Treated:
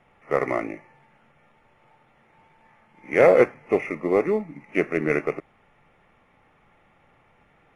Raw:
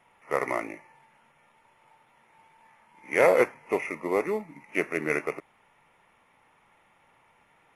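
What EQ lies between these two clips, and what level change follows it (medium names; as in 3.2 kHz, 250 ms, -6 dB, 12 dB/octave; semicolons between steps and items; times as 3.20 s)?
Bessel low-pass 7.3 kHz, order 2; tilt EQ -2 dB/octave; band-stop 950 Hz, Q 6.2; +3.5 dB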